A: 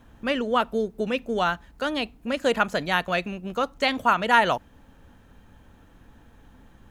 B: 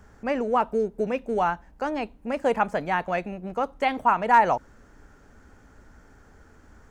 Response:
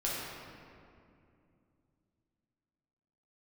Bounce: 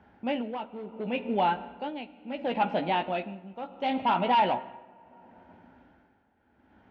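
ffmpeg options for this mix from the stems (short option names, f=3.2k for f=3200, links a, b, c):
-filter_complex "[0:a]flanger=delay=15.5:depth=5.2:speed=0.44,bandreject=f=1.1k:w=24,volume=-2.5dB,asplit=2[a][b];[b]volume=-15.5dB[c];[1:a]volume=-1.5dB,asplit=3[d][e][f];[e]volume=-19dB[g];[f]apad=whole_len=304381[h];[a][h]sidechaingate=range=-33dB:threshold=-52dB:ratio=16:detection=peak[i];[2:a]atrim=start_sample=2205[j];[c][g]amix=inputs=2:normalize=0[k];[k][j]afir=irnorm=-1:irlink=0[l];[i][d][l]amix=inputs=3:normalize=0,asoftclip=type=hard:threshold=-18dB,tremolo=f=0.71:d=0.76,highpass=130,equalizer=f=140:t=q:w=4:g=-9,equalizer=f=450:t=q:w=4:g=-7,equalizer=f=830:t=q:w=4:g=4,equalizer=f=1.2k:t=q:w=4:g=-10,equalizer=f=1.8k:t=q:w=4:g=-4,lowpass=f=3.2k:w=0.5412,lowpass=f=3.2k:w=1.3066"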